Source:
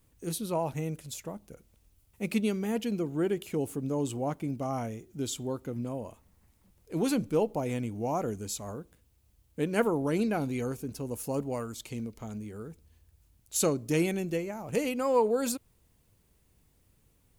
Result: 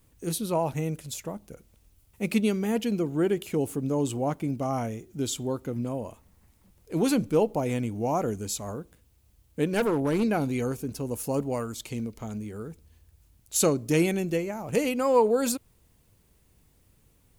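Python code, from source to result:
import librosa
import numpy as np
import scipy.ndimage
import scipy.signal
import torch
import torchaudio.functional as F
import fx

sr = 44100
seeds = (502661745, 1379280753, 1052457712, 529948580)

y = fx.overload_stage(x, sr, gain_db=24.5, at=(9.66, 10.23))
y = F.gain(torch.from_numpy(y), 4.0).numpy()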